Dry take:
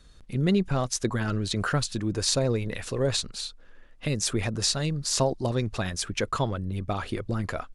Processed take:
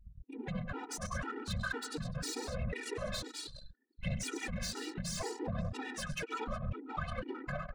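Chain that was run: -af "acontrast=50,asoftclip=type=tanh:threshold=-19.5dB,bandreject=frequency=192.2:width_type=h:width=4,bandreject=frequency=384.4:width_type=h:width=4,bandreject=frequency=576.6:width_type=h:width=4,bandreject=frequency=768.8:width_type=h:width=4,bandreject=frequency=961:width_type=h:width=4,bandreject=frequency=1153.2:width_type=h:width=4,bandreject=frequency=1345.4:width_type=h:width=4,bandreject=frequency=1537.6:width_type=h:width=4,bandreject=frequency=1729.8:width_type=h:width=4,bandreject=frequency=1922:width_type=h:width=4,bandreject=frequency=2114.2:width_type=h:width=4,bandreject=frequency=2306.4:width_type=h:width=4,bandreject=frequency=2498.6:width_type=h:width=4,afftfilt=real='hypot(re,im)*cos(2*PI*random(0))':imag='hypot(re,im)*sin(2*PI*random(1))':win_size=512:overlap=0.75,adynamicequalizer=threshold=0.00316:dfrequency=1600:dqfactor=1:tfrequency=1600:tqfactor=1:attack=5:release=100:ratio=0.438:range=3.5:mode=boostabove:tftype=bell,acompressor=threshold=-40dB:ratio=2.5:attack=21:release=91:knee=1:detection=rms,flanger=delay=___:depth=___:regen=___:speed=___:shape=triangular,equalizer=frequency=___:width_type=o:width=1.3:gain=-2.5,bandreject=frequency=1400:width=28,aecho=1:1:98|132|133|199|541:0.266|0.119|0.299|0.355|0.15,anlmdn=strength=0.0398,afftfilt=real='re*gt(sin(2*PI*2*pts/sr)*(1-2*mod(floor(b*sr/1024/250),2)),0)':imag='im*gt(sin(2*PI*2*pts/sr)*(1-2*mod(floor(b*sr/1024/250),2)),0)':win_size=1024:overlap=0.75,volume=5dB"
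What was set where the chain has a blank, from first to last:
0.1, 7.2, 17, 0.73, 4700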